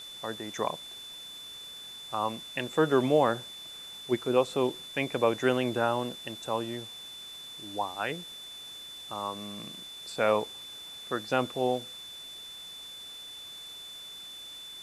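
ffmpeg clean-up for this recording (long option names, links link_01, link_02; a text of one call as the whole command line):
ffmpeg -i in.wav -af "bandreject=frequency=3500:width=30,afwtdn=0.0028" out.wav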